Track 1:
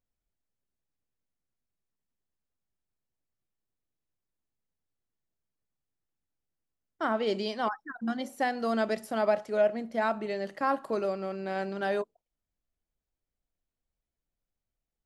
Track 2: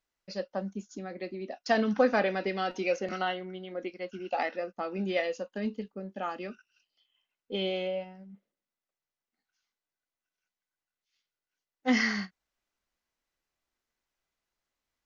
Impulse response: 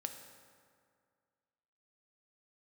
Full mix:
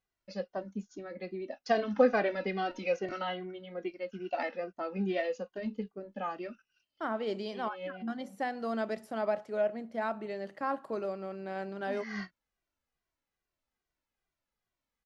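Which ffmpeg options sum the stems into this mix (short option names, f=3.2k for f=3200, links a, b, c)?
-filter_complex "[0:a]highpass=41,volume=-5dB,asplit=2[a][b];[1:a]asplit=2[c][d];[d]adelay=2,afreqshift=-2.4[e];[c][e]amix=inputs=2:normalize=1,volume=1dB[f];[b]apad=whole_len=663853[g];[f][g]sidechaincompress=threshold=-52dB:ratio=10:attack=33:release=134[h];[a][h]amix=inputs=2:normalize=0,highshelf=f=4.2k:g=-7.5"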